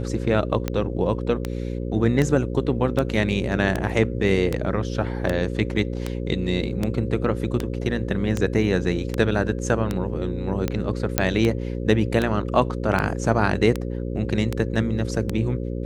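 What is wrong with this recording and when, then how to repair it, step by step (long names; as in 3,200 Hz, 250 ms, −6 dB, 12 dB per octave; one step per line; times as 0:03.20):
mains buzz 60 Hz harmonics 9 −28 dBFS
scratch tick 78 rpm −10 dBFS
0:11.18: click −1 dBFS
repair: click removal
hum removal 60 Hz, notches 9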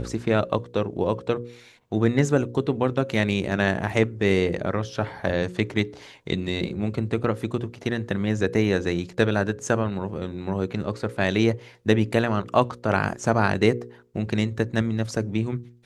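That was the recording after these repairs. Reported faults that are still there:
none of them is left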